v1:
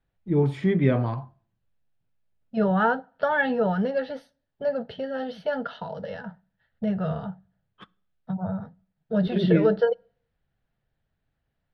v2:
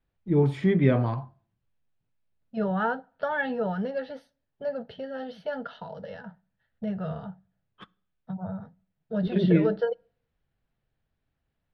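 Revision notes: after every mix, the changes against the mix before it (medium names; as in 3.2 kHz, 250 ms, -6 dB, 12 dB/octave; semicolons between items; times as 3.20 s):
second voice -5.0 dB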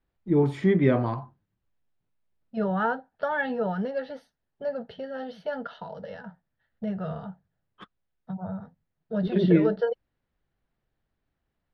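reverb: off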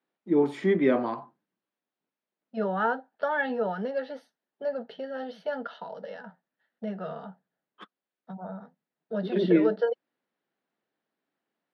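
master: add high-pass 220 Hz 24 dB/octave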